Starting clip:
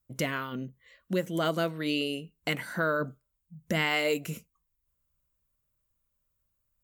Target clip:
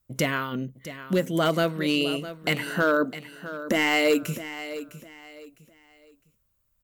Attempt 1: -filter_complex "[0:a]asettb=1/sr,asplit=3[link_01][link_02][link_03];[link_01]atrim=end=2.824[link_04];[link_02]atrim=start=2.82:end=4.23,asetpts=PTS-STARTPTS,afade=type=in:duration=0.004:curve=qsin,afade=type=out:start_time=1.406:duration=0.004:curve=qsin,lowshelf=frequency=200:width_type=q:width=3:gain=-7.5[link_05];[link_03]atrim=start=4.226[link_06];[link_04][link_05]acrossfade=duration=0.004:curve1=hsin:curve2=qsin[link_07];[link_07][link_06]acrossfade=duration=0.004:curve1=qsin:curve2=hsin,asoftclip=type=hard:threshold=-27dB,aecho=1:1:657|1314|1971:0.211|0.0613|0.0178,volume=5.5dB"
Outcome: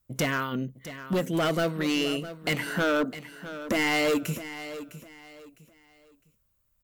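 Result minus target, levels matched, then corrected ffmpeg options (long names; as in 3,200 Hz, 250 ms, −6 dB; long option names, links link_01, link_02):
hard clipping: distortion +10 dB
-filter_complex "[0:a]asettb=1/sr,asplit=3[link_01][link_02][link_03];[link_01]atrim=end=2.824[link_04];[link_02]atrim=start=2.82:end=4.23,asetpts=PTS-STARTPTS,afade=type=in:duration=0.004:curve=qsin,afade=type=out:start_time=1.406:duration=0.004:curve=qsin,lowshelf=frequency=200:width_type=q:width=3:gain=-7.5[link_05];[link_03]atrim=start=4.226[link_06];[link_04][link_05]acrossfade=duration=0.004:curve1=hsin:curve2=qsin[link_07];[link_07][link_06]acrossfade=duration=0.004:curve1=qsin:curve2=hsin,asoftclip=type=hard:threshold=-20.5dB,aecho=1:1:657|1314|1971:0.211|0.0613|0.0178,volume=5.5dB"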